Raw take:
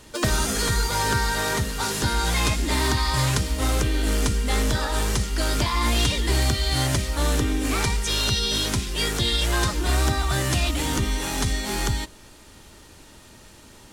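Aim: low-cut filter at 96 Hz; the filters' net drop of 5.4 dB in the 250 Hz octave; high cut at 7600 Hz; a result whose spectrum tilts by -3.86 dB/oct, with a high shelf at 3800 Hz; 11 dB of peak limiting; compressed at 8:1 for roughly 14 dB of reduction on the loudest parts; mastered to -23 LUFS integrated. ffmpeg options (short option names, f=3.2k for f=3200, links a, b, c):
-af "highpass=96,lowpass=7.6k,equalizer=f=250:t=o:g=-7,highshelf=f=3.8k:g=-8.5,acompressor=threshold=-37dB:ratio=8,volume=22.5dB,alimiter=limit=-14dB:level=0:latency=1"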